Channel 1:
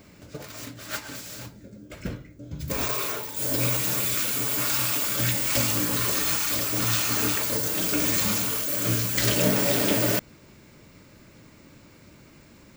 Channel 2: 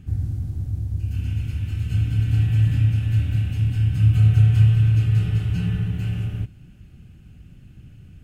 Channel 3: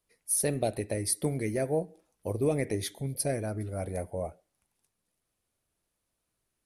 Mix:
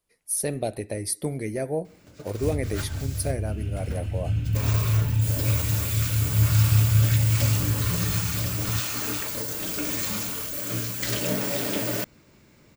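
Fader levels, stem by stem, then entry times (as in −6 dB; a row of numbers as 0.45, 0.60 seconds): −4.5, −4.5, +1.0 decibels; 1.85, 2.35, 0.00 seconds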